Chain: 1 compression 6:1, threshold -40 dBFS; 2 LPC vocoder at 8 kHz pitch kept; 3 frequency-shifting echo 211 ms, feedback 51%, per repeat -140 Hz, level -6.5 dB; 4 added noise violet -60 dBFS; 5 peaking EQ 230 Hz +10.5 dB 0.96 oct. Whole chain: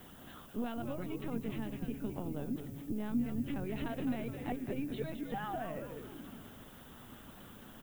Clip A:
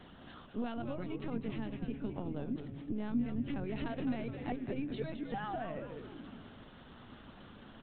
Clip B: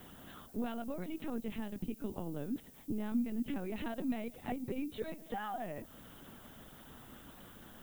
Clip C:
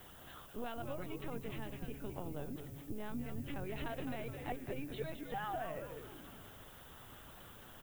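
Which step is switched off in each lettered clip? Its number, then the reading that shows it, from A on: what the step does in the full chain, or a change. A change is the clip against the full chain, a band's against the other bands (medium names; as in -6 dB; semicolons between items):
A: 4, momentary loudness spread change +2 LU; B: 3, 125 Hz band -5.0 dB; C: 5, 250 Hz band -8.0 dB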